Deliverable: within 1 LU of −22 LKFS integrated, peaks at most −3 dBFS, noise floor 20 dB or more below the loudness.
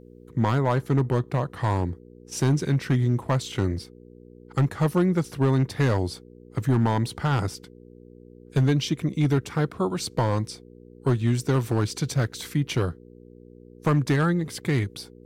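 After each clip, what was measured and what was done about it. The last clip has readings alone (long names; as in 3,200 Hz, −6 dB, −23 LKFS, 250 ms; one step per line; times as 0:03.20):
share of clipped samples 1.0%; peaks flattened at −14.5 dBFS; mains hum 60 Hz; hum harmonics up to 480 Hz; level of the hum −52 dBFS; integrated loudness −25.0 LKFS; sample peak −14.5 dBFS; target loudness −22.0 LKFS
→ clipped peaks rebuilt −14.5 dBFS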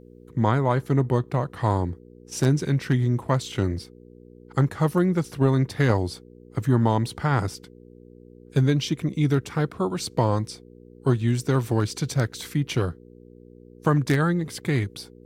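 share of clipped samples 0.0%; mains hum 60 Hz; hum harmonics up to 480 Hz; level of the hum −51 dBFS
→ hum removal 60 Hz, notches 8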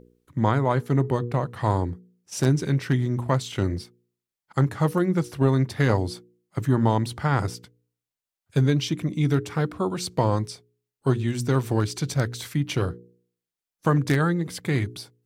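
mains hum none found; integrated loudness −25.0 LKFS; sample peak −6.5 dBFS; target loudness −22.0 LKFS
→ level +3 dB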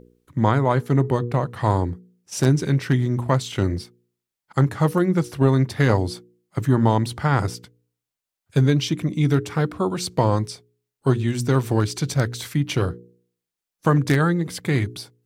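integrated loudness −22.0 LKFS; sample peak −3.5 dBFS; background noise floor −86 dBFS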